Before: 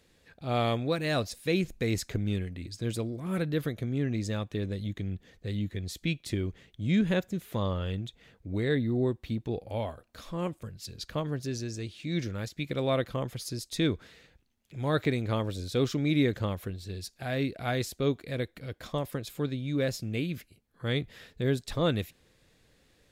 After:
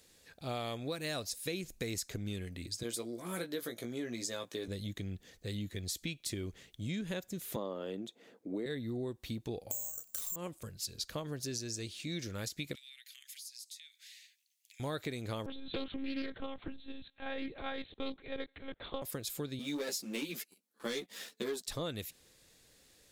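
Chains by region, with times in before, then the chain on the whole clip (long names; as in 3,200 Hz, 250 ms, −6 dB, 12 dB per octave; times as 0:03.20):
0:02.83–0:04.68: high-pass filter 270 Hz + notch filter 2,700 Hz + double-tracking delay 17 ms −5.5 dB
0:07.56–0:08.66: high-pass filter 240 Hz 24 dB per octave + tilt shelving filter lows +9 dB, about 1,200 Hz
0:09.71–0:10.36: downward compressor 4 to 1, threshold −44 dBFS + bad sample-rate conversion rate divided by 6×, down none, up zero stuff
0:12.75–0:14.80: Butterworth high-pass 1,900 Hz 48 dB per octave + downward compressor 12 to 1, threshold −51 dBFS
0:15.46–0:19.02: one-pitch LPC vocoder at 8 kHz 270 Hz + highs frequency-modulated by the lows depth 0.25 ms
0:19.59–0:21.67: Butterworth high-pass 190 Hz + leveller curve on the samples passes 2 + string-ensemble chorus
whole clip: bass and treble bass −4 dB, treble +11 dB; downward compressor, threshold −33 dBFS; level −2 dB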